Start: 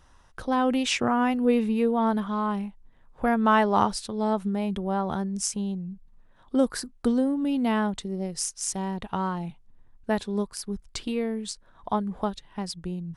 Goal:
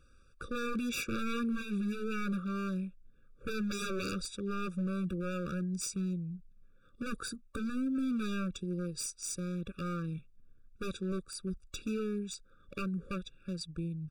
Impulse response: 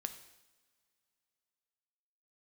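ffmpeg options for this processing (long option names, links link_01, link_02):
-af "aeval=exprs='0.0631*(abs(mod(val(0)/0.0631+3,4)-2)-1)':channel_layout=same,asetrate=41145,aresample=44100,afftfilt=real='re*eq(mod(floor(b*sr/1024/560),2),0)':imag='im*eq(mod(floor(b*sr/1024/560),2),0)':win_size=1024:overlap=0.75,volume=-4.5dB"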